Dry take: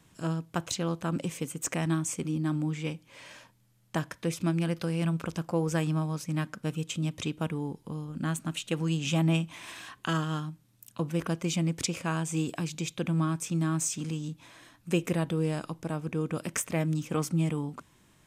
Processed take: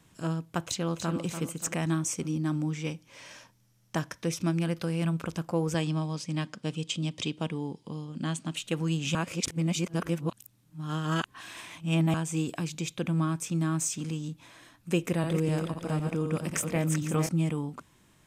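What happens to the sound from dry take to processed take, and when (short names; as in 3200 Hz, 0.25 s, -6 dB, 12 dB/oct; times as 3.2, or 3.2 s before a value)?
0.64–1.2 echo throw 0.29 s, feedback 45%, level -8 dB
2.02–4.59 bell 5700 Hz +9.5 dB 0.23 oct
5.74–8.56 speaker cabinet 120–9300 Hz, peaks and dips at 1400 Hz -6 dB, 3200 Hz +6 dB, 4800 Hz +7 dB
9.15–12.14 reverse
14.98–17.29 regenerating reverse delay 0.254 s, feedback 42%, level -4.5 dB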